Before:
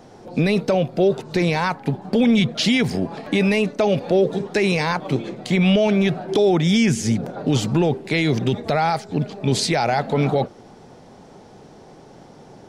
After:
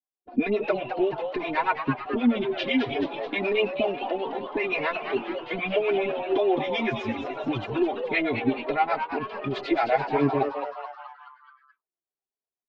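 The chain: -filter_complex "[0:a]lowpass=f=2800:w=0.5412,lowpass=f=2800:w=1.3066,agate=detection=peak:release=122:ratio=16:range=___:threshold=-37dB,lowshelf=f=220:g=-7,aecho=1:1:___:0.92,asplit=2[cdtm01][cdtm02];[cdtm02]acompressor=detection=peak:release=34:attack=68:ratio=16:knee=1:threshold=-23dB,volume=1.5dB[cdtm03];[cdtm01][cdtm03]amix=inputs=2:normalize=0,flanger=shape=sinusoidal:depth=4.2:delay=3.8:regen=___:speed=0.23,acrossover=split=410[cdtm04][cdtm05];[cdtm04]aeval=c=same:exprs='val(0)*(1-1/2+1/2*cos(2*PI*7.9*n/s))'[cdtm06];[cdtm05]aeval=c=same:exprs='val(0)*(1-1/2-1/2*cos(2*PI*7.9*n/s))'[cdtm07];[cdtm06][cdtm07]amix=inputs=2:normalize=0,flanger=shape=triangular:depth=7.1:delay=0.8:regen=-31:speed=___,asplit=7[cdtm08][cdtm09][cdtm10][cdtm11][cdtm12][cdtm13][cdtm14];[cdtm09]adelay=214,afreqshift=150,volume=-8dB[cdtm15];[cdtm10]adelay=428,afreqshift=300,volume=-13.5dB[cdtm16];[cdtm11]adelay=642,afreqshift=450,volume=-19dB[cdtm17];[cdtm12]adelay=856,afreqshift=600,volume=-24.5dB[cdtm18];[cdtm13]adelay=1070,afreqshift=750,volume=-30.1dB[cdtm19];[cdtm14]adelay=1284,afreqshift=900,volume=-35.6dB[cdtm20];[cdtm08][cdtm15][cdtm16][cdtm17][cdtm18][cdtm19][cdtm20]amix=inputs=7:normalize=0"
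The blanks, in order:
-55dB, 2.9, 31, 0.53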